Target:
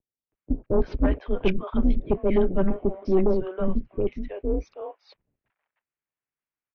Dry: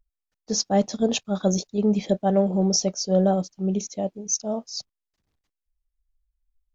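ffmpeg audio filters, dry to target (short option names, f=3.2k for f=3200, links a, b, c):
-filter_complex "[0:a]highpass=f=180:t=q:w=0.5412,highpass=f=180:t=q:w=1.307,lowpass=f=2.7k:t=q:w=0.5176,lowpass=f=2.7k:t=q:w=0.7071,lowpass=f=2.7k:t=q:w=1.932,afreqshift=-180,asplit=2[a][b];[b]acompressor=threshold=-31dB:ratio=6,volume=-3dB[c];[a][c]amix=inputs=2:normalize=0,acrossover=split=600[d][e];[e]adelay=320[f];[d][f]amix=inputs=2:normalize=0,aeval=exprs='0.398*sin(PI/2*1.58*val(0)/0.398)':c=same,volume=-5dB"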